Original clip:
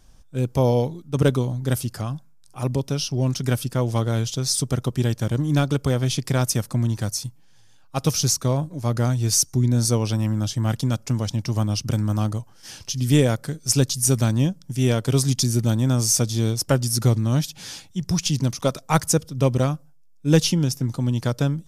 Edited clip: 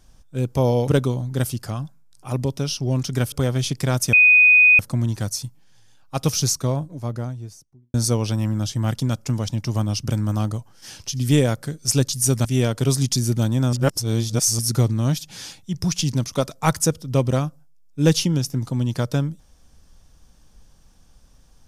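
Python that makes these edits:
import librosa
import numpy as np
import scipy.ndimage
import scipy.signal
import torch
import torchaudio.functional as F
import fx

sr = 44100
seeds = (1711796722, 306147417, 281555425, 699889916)

y = fx.studio_fade_out(x, sr, start_s=8.23, length_s=1.52)
y = fx.edit(y, sr, fx.cut(start_s=0.88, length_s=0.31),
    fx.cut(start_s=3.63, length_s=2.16),
    fx.insert_tone(at_s=6.6, length_s=0.66, hz=2490.0, db=-9.0),
    fx.cut(start_s=14.26, length_s=0.46),
    fx.reverse_span(start_s=16.0, length_s=0.86), tone=tone)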